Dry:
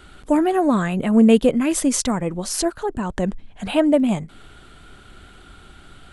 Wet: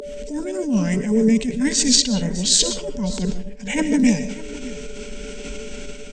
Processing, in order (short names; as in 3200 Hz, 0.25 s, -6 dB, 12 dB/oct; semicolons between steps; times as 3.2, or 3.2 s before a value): opening faded in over 1.04 s; low shelf 130 Hz +7.5 dB; limiter -12.5 dBFS, peak gain reduction 11 dB; whine 580 Hz -29 dBFS; fixed phaser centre 330 Hz, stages 6; formant shift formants -5 st; graphic EQ 125/250/500/1000/4000/8000 Hz -9/+12/-5/+8/+9/+10 dB; echo 0.605 s -18.5 dB; reverb RT60 0.40 s, pre-delay 80 ms, DRR 9.5 dB; attack slew limiter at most 100 dB/s